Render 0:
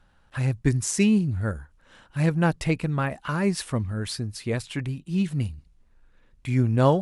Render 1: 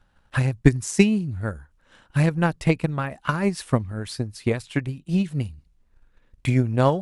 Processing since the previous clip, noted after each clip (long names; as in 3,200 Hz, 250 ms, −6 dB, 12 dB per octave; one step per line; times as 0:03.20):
transient designer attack +12 dB, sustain 0 dB
level −3 dB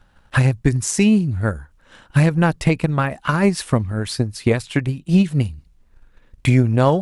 boost into a limiter +11.5 dB
level −4 dB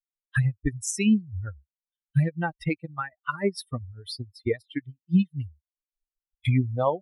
spectral dynamics exaggerated over time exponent 3
level −3 dB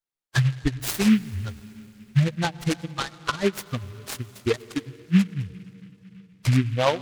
on a send at −17 dB: convolution reverb RT60 3.7 s, pre-delay 83 ms
on the sum: short delay modulated by noise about 2,100 Hz, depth 0.091 ms
level +2.5 dB